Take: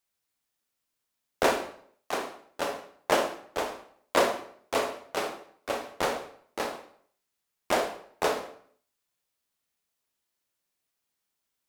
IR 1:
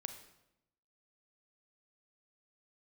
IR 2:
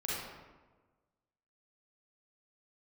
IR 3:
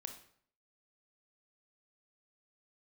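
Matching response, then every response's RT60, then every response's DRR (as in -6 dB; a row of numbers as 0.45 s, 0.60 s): 3; 0.85 s, 1.3 s, 0.60 s; 7.5 dB, -7.5 dB, 5.0 dB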